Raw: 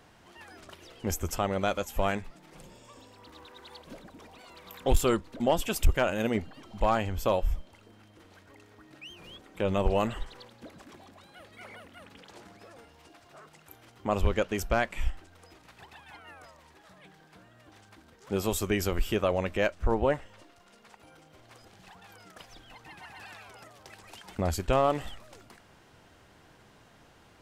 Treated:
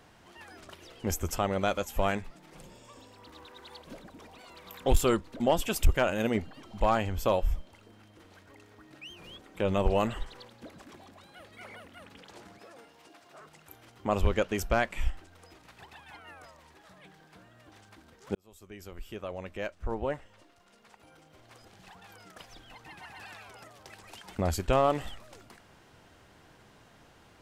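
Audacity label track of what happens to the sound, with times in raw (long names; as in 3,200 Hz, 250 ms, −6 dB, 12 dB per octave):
12.580000	13.410000	high-pass filter 180 Hz
18.350000	21.900000	fade in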